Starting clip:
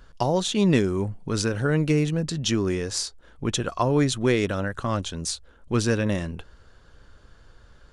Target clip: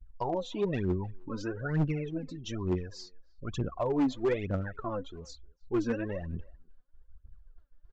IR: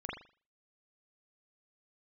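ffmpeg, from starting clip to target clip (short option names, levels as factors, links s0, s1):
-filter_complex "[0:a]aphaser=in_gain=1:out_gain=1:delay=4.1:decay=0.75:speed=1.1:type=triangular,agate=range=0.0224:threshold=0.0141:ratio=3:detection=peak,afftdn=nr=19:nf=-31,areverse,acompressor=mode=upward:threshold=0.0224:ratio=2.5,areverse,lowpass=f=1000:p=1,lowshelf=f=480:g=-3.5,aresample=16000,asoftclip=type=hard:threshold=0.178,aresample=44100,asplit=2[s0][s1];[s1]adelay=310,highpass=300,lowpass=3400,asoftclip=type=hard:threshold=0.0668,volume=0.0562[s2];[s0][s2]amix=inputs=2:normalize=0,volume=0.422"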